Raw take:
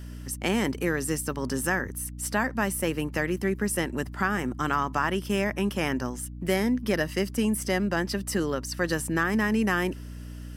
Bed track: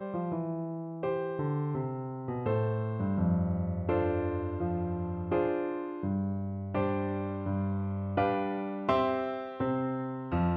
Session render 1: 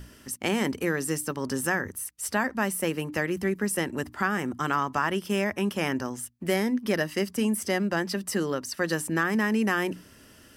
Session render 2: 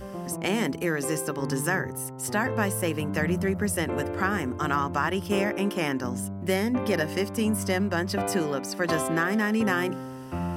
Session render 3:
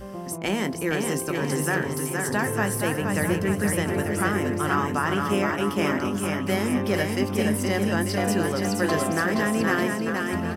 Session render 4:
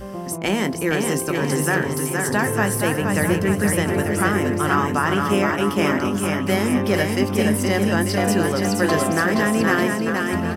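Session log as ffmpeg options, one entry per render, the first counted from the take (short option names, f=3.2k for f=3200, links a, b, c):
-af "bandreject=f=60:t=h:w=6,bandreject=f=120:t=h:w=6,bandreject=f=180:t=h:w=6,bandreject=f=240:t=h:w=6,bandreject=f=300:t=h:w=6"
-filter_complex "[1:a]volume=-2dB[a];[0:a][a]amix=inputs=2:normalize=0"
-filter_complex "[0:a]asplit=2[a][b];[b]adelay=20,volume=-14dB[c];[a][c]amix=inputs=2:normalize=0,aecho=1:1:470|893|1274|1616|1925:0.631|0.398|0.251|0.158|0.1"
-af "volume=4.5dB"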